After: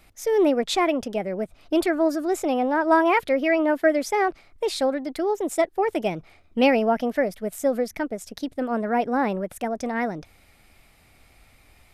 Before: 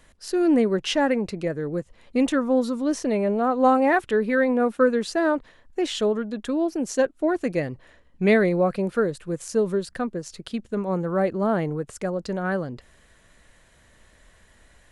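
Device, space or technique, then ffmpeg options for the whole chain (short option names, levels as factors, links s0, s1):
nightcore: -af "asetrate=55125,aresample=44100"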